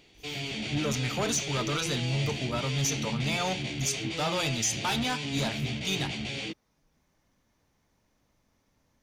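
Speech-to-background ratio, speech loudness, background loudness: 2.5 dB, -31.0 LUFS, -33.5 LUFS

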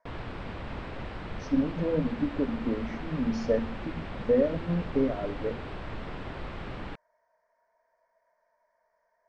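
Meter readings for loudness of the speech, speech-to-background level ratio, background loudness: -30.0 LUFS, 9.5 dB, -39.5 LUFS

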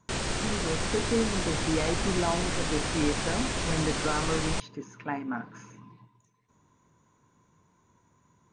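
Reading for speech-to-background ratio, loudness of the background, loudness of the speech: -2.0 dB, -30.5 LUFS, -32.5 LUFS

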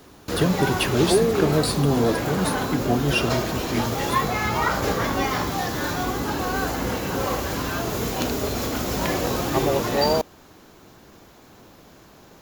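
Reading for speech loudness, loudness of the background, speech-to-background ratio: -24.5 LUFS, -24.5 LUFS, 0.0 dB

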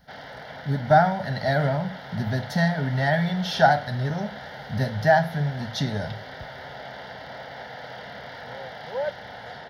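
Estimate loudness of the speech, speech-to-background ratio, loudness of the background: -24.0 LUFS, 14.0 dB, -38.0 LUFS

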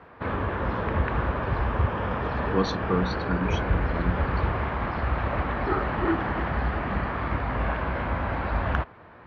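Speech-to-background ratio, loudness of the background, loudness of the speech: -3.5 dB, -28.0 LUFS, -31.5 LUFS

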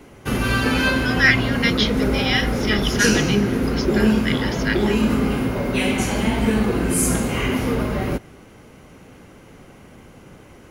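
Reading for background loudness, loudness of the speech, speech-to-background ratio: -20.5 LUFS, -23.0 LUFS, -2.5 dB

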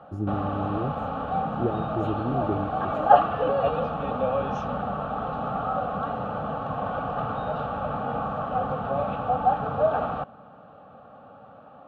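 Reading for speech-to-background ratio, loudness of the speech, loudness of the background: -4.0 dB, -31.0 LUFS, -27.0 LUFS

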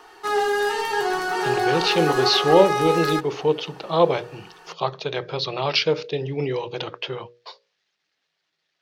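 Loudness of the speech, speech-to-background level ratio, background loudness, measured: -22.5 LUFS, 0.5 dB, -23.0 LUFS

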